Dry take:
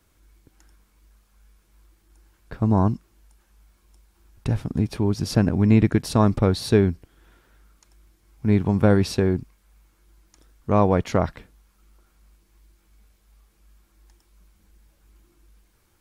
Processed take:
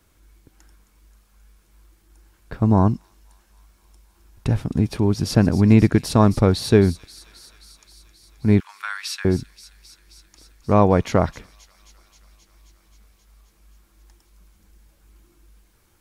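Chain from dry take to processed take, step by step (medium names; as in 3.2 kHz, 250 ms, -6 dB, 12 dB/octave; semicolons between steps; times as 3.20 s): 8.60–9.25 s: steep high-pass 1.2 kHz 36 dB/octave; feedback echo behind a high-pass 265 ms, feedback 76%, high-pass 4.4 kHz, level -11 dB; trim +3 dB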